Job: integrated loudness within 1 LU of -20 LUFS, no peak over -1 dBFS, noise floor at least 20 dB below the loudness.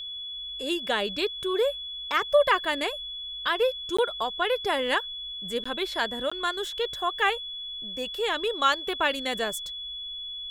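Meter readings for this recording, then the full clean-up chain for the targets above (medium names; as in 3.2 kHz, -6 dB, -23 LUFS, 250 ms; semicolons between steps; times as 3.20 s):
dropouts 3; longest dropout 15 ms; steady tone 3.4 kHz; tone level -34 dBFS; loudness -27.5 LUFS; peak level -9.5 dBFS; loudness target -20.0 LUFS
-> interpolate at 3.97/5.64/6.30 s, 15 ms; band-stop 3.4 kHz, Q 30; trim +7.5 dB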